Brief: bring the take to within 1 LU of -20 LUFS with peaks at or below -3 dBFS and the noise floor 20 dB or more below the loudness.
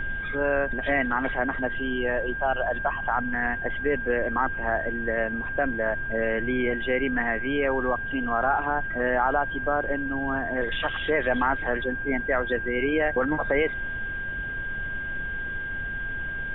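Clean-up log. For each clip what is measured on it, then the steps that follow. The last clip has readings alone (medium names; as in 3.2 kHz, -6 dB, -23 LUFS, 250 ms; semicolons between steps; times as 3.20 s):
steady tone 1.6 kHz; tone level -30 dBFS; noise floor -32 dBFS; noise floor target -47 dBFS; loudness -26.5 LUFS; peak level -10.0 dBFS; loudness target -20.0 LUFS
-> band-stop 1.6 kHz, Q 30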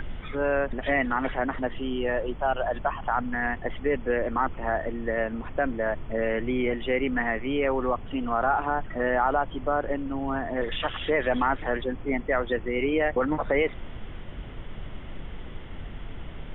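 steady tone not found; noise floor -39 dBFS; noise floor target -48 dBFS
-> noise print and reduce 9 dB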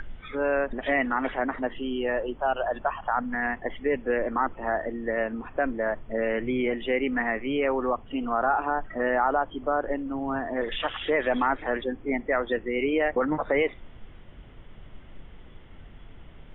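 noise floor -47 dBFS; noise floor target -48 dBFS
-> noise print and reduce 6 dB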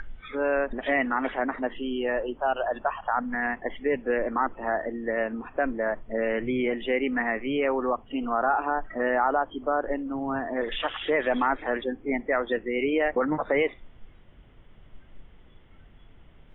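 noise floor -53 dBFS; loudness -27.5 LUFS; peak level -11.5 dBFS; loudness target -20.0 LUFS
-> trim +7.5 dB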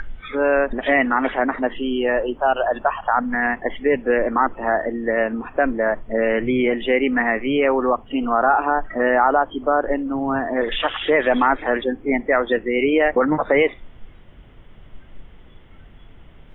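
loudness -20.0 LUFS; peak level -4.0 dBFS; noise floor -46 dBFS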